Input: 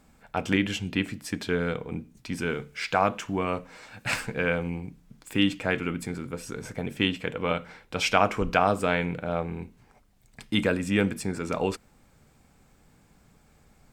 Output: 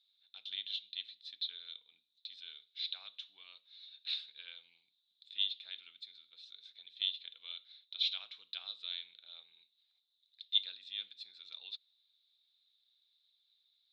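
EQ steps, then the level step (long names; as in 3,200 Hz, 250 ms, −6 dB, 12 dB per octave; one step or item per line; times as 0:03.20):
flat-topped band-pass 3,800 Hz, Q 7.4
spectral tilt −4.5 dB per octave
+17.0 dB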